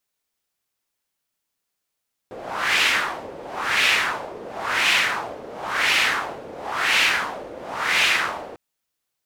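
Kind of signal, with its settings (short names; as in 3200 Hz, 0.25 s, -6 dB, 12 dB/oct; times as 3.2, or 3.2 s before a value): wind-like swept noise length 6.25 s, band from 480 Hz, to 2500 Hz, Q 2.2, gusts 6, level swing 19 dB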